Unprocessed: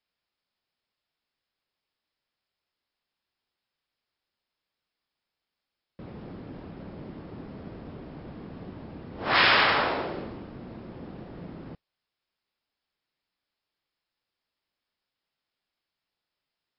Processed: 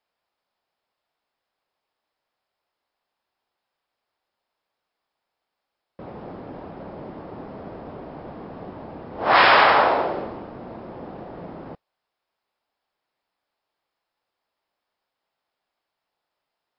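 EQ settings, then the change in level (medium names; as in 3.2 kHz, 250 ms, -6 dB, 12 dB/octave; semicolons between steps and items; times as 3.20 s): peaking EQ 760 Hz +12.5 dB 2.1 oct; -1.0 dB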